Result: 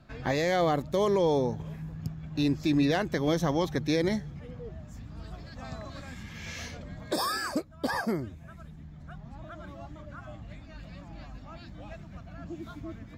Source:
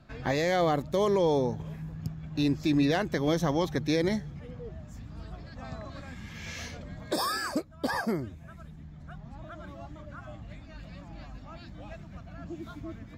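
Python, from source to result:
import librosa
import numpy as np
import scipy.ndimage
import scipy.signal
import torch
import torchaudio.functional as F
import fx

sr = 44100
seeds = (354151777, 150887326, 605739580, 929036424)

y = fx.high_shelf(x, sr, hz=4300.0, db=7.0, at=(5.24, 6.23))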